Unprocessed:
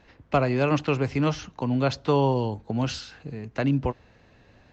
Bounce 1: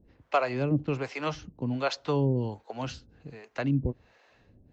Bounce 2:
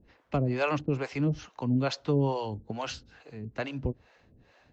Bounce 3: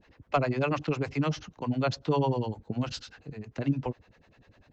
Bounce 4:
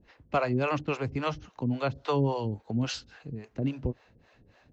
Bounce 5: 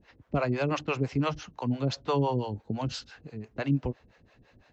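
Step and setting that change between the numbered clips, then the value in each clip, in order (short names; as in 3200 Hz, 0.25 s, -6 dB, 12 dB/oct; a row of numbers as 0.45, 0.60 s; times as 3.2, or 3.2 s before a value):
harmonic tremolo, rate: 1.3, 2.3, 10, 3.6, 5.9 Hz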